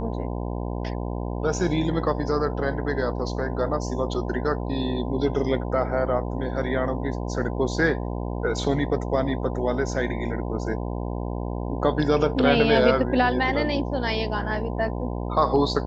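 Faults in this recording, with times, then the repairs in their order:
buzz 60 Hz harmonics 17 -29 dBFS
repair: de-hum 60 Hz, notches 17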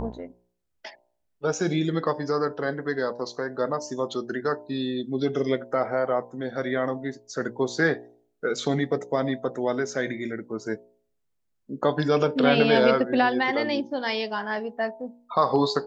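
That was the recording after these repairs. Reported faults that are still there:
none

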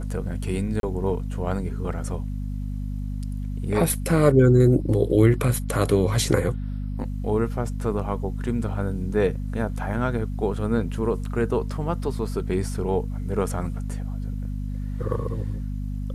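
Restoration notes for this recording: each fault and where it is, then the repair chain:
hum 50 Hz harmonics 5 -29 dBFS
0.8–0.83 gap 32 ms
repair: de-hum 50 Hz, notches 5; interpolate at 0.8, 32 ms

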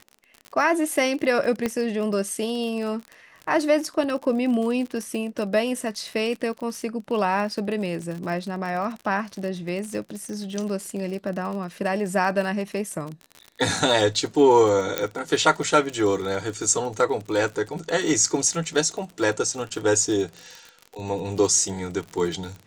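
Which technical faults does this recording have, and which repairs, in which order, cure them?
crackle 43/s -30 dBFS
1.66 pop -11 dBFS
14.98 pop -7 dBFS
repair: de-click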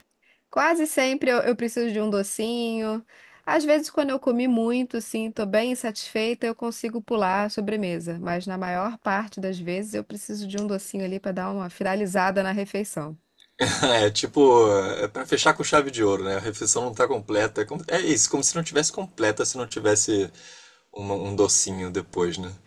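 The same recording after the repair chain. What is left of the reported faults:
none

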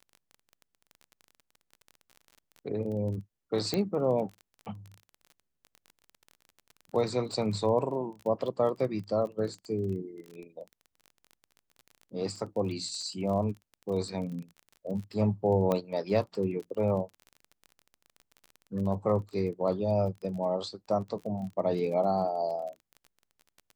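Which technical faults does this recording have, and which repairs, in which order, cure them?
crackle 26/s -38 dBFS
3.74 pop -15 dBFS
15.72 pop -16 dBFS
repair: de-click

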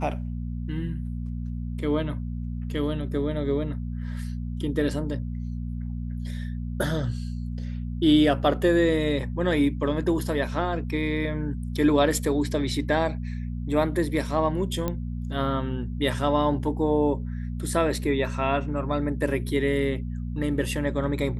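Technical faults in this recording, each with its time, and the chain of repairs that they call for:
hum 60 Hz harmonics 4 -31 dBFS
14.88 pop -14 dBFS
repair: de-click; de-hum 60 Hz, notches 4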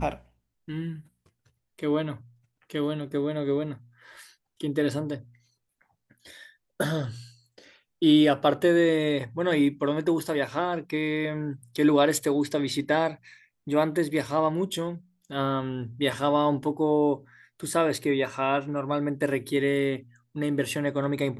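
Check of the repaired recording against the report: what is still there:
none

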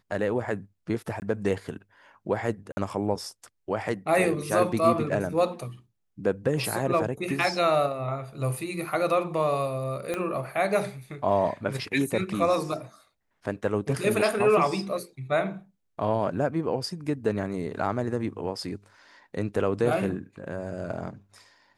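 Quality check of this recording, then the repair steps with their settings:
1.2–1.22 gap 19 ms
2.72–2.77 gap 50 ms
10.14 pop -16 dBFS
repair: de-click; interpolate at 1.2, 19 ms; interpolate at 2.72, 50 ms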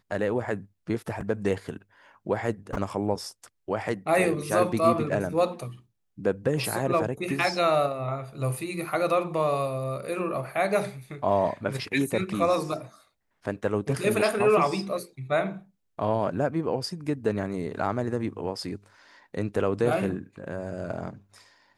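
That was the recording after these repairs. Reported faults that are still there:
10.14 pop

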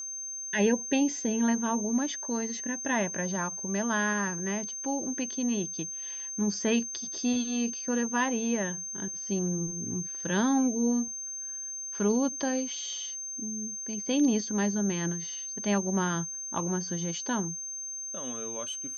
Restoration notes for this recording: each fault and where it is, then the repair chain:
tone 6300 Hz -35 dBFS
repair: notch 6300 Hz, Q 30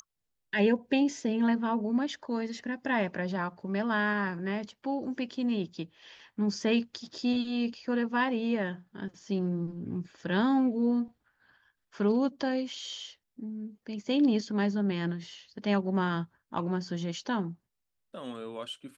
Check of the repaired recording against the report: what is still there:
none

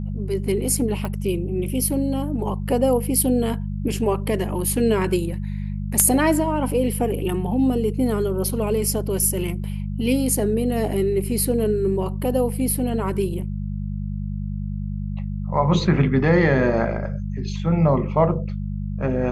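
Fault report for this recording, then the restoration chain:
hum 50 Hz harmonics 4 -27 dBFS
1.05 pop -16 dBFS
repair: de-click; de-hum 50 Hz, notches 4

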